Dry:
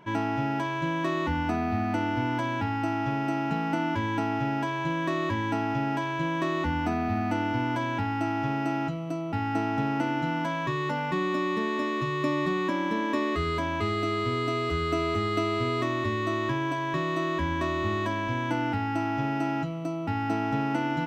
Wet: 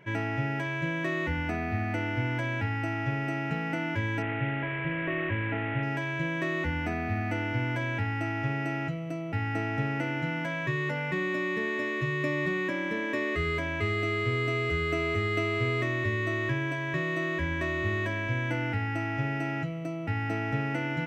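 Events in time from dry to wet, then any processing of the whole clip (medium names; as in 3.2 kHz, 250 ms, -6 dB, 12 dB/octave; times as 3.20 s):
4.22–5.83 s: CVSD coder 16 kbps
whole clip: graphic EQ 125/250/500/1000/2000/4000 Hz +7/-6/+6/-10/+11/-5 dB; trim -3 dB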